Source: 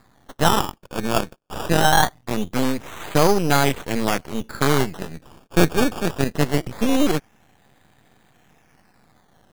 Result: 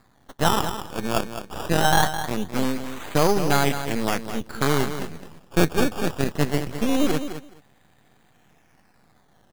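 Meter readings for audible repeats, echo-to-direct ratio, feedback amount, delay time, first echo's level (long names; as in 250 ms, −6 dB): 2, −10.0 dB, 15%, 211 ms, −10.0 dB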